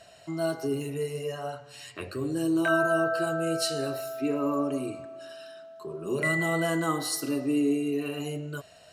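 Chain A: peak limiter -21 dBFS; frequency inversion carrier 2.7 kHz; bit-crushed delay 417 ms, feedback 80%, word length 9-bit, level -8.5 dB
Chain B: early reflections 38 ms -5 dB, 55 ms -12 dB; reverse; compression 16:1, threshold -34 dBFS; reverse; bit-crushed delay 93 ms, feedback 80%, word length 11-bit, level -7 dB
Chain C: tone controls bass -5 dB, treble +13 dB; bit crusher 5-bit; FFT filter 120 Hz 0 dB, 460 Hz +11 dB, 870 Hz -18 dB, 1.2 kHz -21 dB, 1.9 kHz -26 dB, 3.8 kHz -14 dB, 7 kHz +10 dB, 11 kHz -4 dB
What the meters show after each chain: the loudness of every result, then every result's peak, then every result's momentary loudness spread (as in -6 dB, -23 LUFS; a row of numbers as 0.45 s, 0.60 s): -28.0 LUFS, -36.5 LUFS, -22.0 LUFS; -16.5 dBFS, -23.0 dBFS, -4.0 dBFS; 9 LU, 7 LU, 16 LU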